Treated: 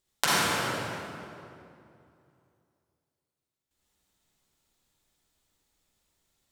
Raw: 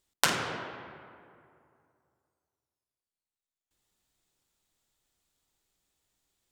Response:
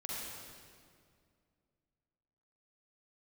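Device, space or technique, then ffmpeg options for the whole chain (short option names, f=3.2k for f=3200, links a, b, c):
stairwell: -filter_complex "[1:a]atrim=start_sample=2205[a];[0:a][a]afir=irnorm=-1:irlink=0,volume=3dB"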